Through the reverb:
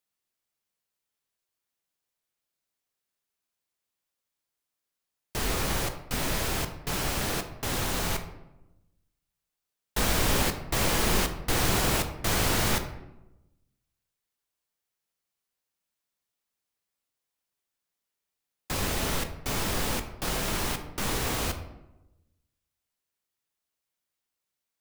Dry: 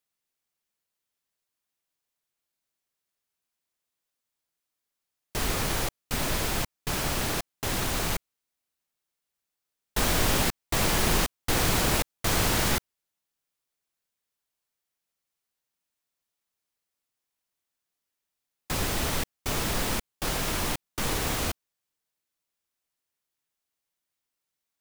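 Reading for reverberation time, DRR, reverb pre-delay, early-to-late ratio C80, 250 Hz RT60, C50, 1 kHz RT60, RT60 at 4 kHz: 0.95 s, 6.5 dB, 9 ms, 12.0 dB, 1.2 s, 9.5 dB, 0.90 s, 0.55 s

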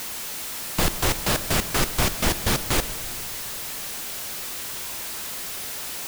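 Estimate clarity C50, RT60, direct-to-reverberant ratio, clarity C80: 13.5 dB, 2.2 s, 12.0 dB, 14.5 dB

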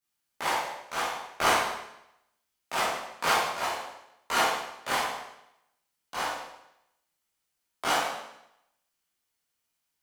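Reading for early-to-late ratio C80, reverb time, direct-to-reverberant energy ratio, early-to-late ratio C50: 4.0 dB, 0.80 s, −9.5 dB, 0.5 dB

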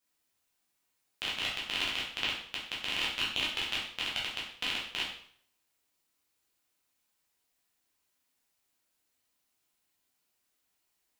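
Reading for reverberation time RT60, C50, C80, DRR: 0.55 s, 4.0 dB, 7.5 dB, −6.0 dB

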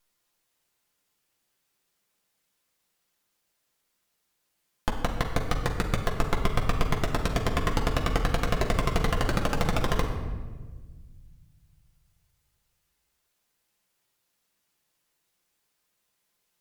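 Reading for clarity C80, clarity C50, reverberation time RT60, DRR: 8.0 dB, 6.0 dB, 1.4 s, 0.5 dB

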